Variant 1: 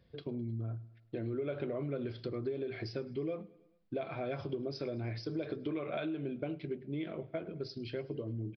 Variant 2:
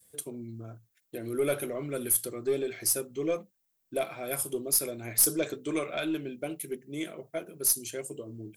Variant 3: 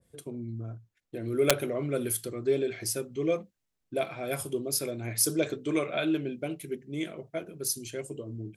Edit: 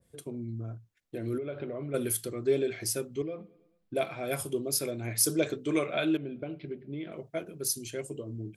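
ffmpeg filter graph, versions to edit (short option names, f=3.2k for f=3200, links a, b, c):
-filter_complex "[0:a]asplit=3[a][b][c];[2:a]asplit=4[d][e][f][g];[d]atrim=end=1.382[h];[a]atrim=start=1.378:end=1.942[i];[e]atrim=start=1.938:end=3.222[j];[b]atrim=start=3.218:end=3.952[k];[f]atrim=start=3.948:end=6.172[l];[c]atrim=start=6.168:end=7.122[m];[g]atrim=start=7.118[n];[h][i]acrossfade=d=0.004:c1=hsin:c2=hsin[o];[o][j]acrossfade=d=0.004:c1=hsin:c2=hsin[p];[p][k]acrossfade=d=0.004:c1=hsin:c2=hsin[q];[q][l]acrossfade=d=0.004:c1=hsin:c2=hsin[r];[r][m]acrossfade=d=0.004:c1=hsin:c2=hsin[s];[s][n]acrossfade=d=0.004:c1=hsin:c2=hsin"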